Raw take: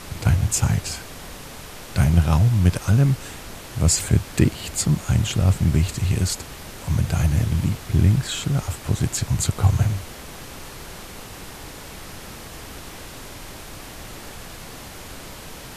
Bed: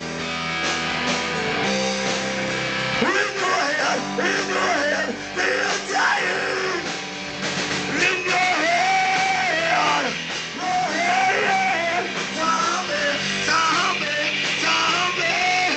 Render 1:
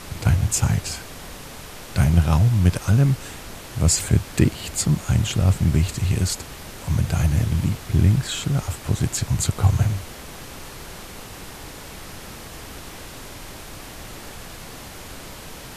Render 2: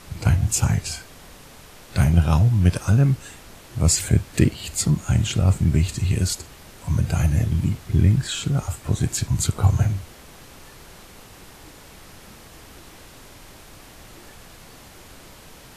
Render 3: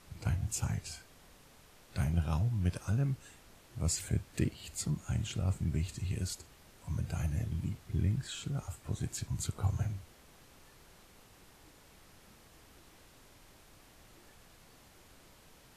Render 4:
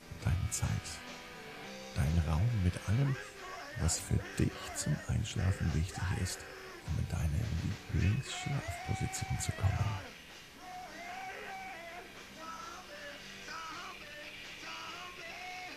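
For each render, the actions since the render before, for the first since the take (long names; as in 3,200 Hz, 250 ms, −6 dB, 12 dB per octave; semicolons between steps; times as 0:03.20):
no processing that can be heard
noise reduction from a noise print 7 dB
level −14.5 dB
mix in bed −25 dB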